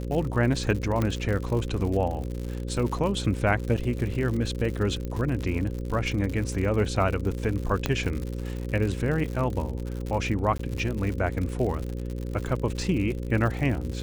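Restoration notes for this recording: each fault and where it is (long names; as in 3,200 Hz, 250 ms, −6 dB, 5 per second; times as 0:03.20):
mains buzz 60 Hz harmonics 9 −32 dBFS
surface crackle 96 per second −31 dBFS
0:01.02: click −14 dBFS
0:05.05: click −21 dBFS
0:07.86: click −10 dBFS
0:10.58–0:10.59: drop-out 14 ms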